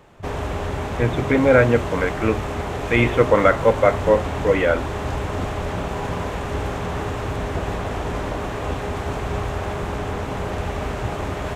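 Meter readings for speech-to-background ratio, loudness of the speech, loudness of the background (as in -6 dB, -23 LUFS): 8.0 dB, -19.0 LUFS, -27.0 LUFS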